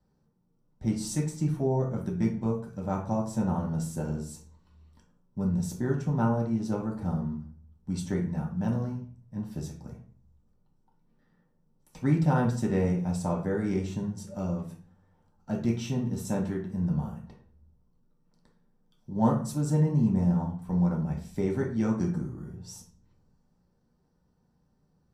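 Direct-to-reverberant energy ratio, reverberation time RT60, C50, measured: -3.0 dB, 0.45 s, 7.0 dB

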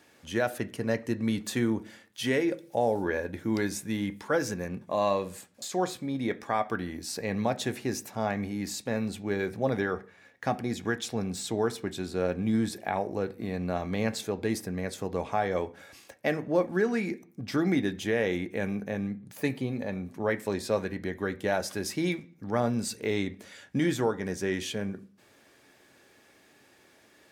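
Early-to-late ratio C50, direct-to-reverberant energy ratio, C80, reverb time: 20.0 dB, 9.0 dB, 24.5 dB, 0.40 s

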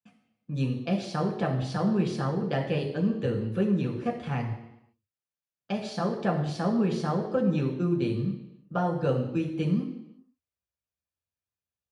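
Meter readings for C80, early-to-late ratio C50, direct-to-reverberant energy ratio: 9.5 dB, 7.0 dB, 0.0 dB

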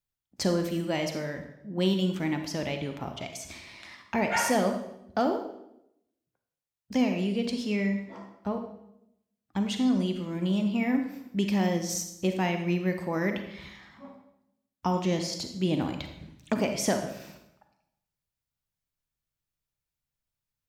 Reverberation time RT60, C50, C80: 0.80 s, 7.0 dB, 10.0 dB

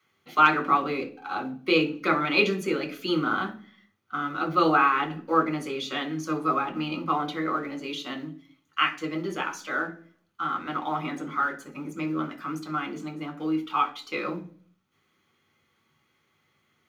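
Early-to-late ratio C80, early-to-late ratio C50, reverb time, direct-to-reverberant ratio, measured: 19.0 dB, 14.5 dB, 0.45 s, 2.5 dB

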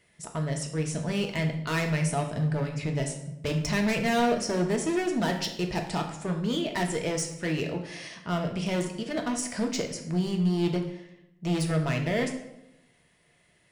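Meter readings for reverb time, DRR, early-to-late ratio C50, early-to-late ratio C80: 0.90 s, 2.5 dB, 8.0 dB, 11.0 dB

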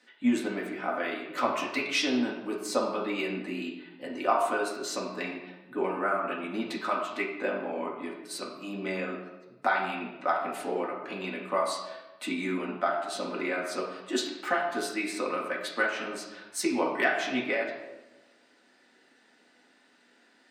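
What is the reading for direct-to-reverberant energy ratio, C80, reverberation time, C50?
-3.5 dB, 7.0 dB, 1.1 s, 4.5 dB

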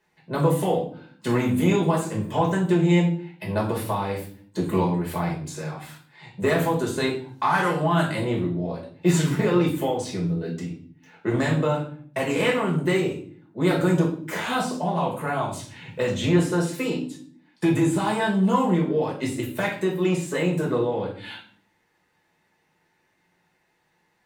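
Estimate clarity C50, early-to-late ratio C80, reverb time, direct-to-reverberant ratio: 7.5 dB, 12.0 dB, 0.50 s, -3.0 dB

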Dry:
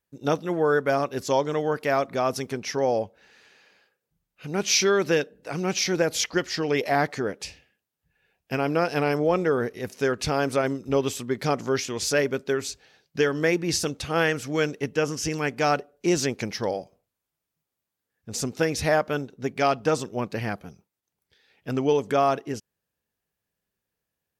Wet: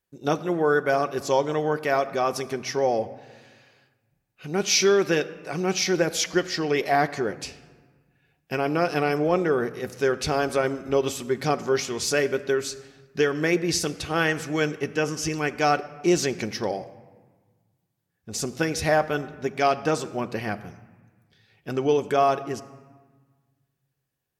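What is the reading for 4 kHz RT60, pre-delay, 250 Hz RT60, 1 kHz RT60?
0.90 s, 3 ms, 1.8 s, 1.5 s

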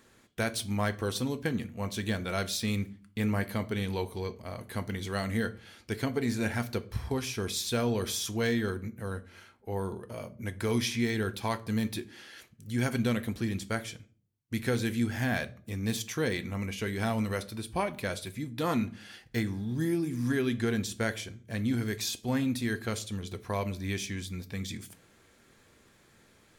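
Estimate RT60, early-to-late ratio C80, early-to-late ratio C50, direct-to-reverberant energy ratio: 0.40 s, 26.0 dB, 21.0 dB, 11.5 dB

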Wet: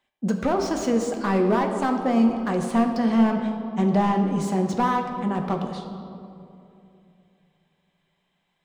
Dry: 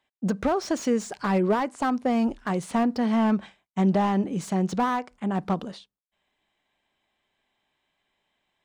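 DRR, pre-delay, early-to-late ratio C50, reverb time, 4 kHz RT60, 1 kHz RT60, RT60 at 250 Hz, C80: 3.0 dB, 4 ms, 5.5 dB, 2.8 s, 1.3 s, 2.5 s, 3.0 s, 7.0 dB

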